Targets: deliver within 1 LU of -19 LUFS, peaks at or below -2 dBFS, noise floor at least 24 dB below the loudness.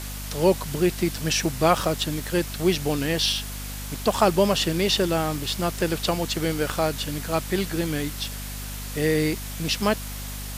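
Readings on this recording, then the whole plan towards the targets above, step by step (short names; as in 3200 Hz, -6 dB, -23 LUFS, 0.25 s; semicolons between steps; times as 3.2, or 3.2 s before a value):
hum 50 Hz; harmonics up to 250 Hz; hum level -33 dBFS; noise floor -34 dBFS; noise floor target -49 dBFS; loudness -24.5 LUFS; peak -5.5 dBFS; loudness target -19.0 LUFS
-> notches 50/100/150/200/250 Hz; denoiser 15 dB, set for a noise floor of -34 dBFS; gain +5.5 dB; limiter -2 dBFS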